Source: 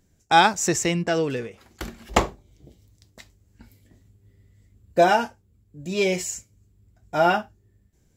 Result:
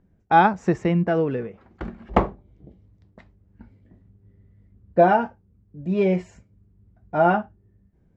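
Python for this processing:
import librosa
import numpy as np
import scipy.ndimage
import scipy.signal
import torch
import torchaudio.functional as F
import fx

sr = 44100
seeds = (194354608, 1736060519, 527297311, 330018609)

y = scipy.signal.sosfilt(scipy.signal.butter(2, 1400.0, 'lowpass', fs=sr, output='sos'), x)
y = fx.peak_eq(y, sr, hz=190.0, db=6.5, octaves=0.33)
y = y * 10.0 ** (1.5 / 20.0)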